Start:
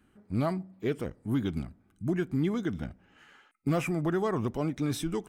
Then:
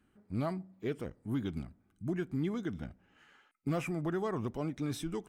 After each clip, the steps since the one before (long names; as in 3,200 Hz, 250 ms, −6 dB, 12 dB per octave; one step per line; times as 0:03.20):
high-shelf EQ 11,000 Hz −3 dB
level −5.5 dB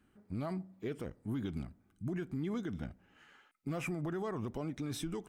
brickwall limiter −30.5 dBFS, peak gain reduction 6.5 dB
level +1 dB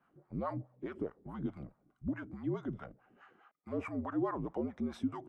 LFO wah 4.7 Hz 350–1,200 Hz, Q 2.3
frequency shifter −62 Hz
level +9 dB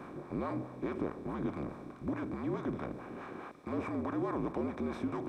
compressor on every frequency bin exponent 0.4
reversed playback
upward compression, threshold −36 dBFS
reversed playback
level −4 dB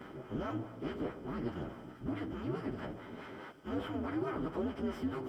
partials spread apart or drawn together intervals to 113%
level +1.5 dB